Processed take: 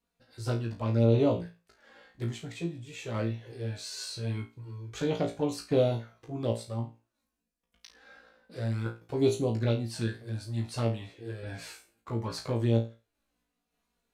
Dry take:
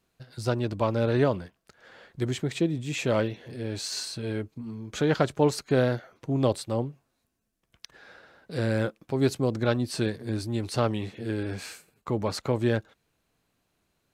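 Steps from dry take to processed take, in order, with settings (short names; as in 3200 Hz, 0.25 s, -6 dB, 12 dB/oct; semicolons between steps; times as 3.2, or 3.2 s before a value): random-step tremolo; envelope flanger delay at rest 4.2 ms, full sweep at -22 dBFS; flutter echo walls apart 3 m, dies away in 0.29 s; gain -2.5 dB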